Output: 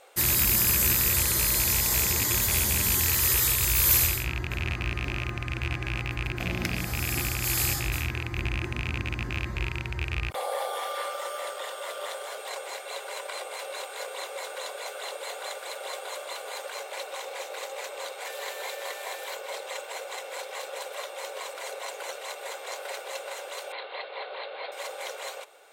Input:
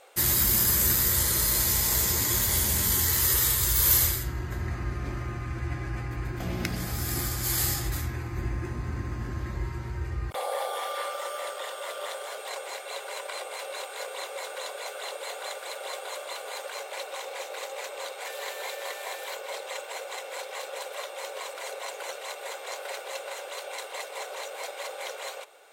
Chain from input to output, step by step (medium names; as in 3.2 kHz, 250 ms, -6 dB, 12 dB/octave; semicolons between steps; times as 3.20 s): rattle on loud lows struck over -30 dBFS, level -18 dBFS; 23.72–24.72 s: steep low-pass 4.4 kHz 96 dB/octave